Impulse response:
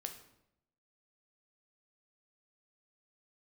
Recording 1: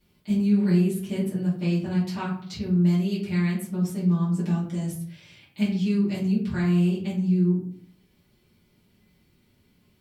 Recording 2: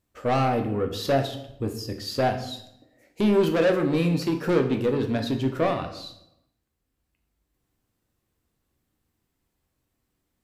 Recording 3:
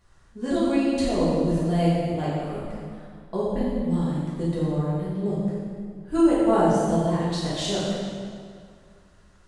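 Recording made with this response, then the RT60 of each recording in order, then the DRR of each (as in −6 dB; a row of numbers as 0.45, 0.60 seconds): 2; 0.60, 0.80, 2.1 seconds; −11.0, 5.0, −9.5 decibels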